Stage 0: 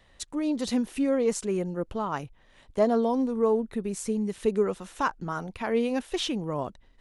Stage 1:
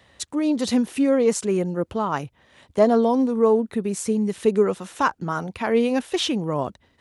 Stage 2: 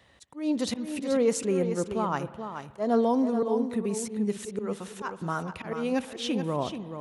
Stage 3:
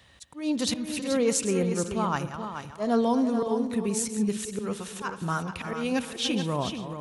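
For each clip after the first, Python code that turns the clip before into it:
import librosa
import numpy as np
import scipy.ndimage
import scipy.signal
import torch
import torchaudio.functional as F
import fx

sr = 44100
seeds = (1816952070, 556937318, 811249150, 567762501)

y1 = scipy.signal.sosfilt(scipy.signal.butter(4, 67.0, 'highpass', fs=sr, output='sos'), x)
y1 = y1 * 10.0 ** (6.0 / 20.0)
y2 = fx.auto_swell(y1, sr, attack_ms=178.0)
y2 = y2 + 10.0 ** (-8.5 / 20.0) * np.pad(y2, (int(431 * sr / 1000.0), 0))[:len(y2)]
y2 = fx.rev_spring(y2, sr, rt60_s=1.8, pass_ms=(55,), chirp_ms=80, drr_db=16.0)
y2 = y2 * 10.0 ** (-4.5 / 20.0)
y3 = fx.reverse_delay(y2, sr, ms=204, wet_db=-11.5)
y3 = fx.peak_eq(y3, sr, hz=480.0, db=-8.0, octaves=3.0)
y3 = fx.notch(y3, sr, hz=2000.0, q=19.0)
y3 = y3 * 10.0 ** (6.5 / 20.0)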